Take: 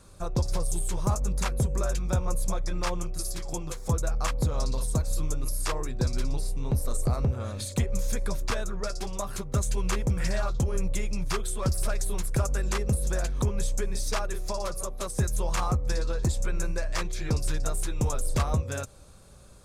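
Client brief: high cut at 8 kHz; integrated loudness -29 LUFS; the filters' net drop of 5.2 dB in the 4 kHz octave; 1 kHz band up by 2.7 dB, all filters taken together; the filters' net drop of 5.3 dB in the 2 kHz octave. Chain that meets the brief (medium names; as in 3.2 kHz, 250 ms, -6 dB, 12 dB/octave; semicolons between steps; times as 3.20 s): low-pass 8 kHz; peaking EQ 1 kHz +6 dB; peaking EQ 2 kHz -9 dB; peaking EQ 4 kHz -4.5 dB; trim +1.5 dB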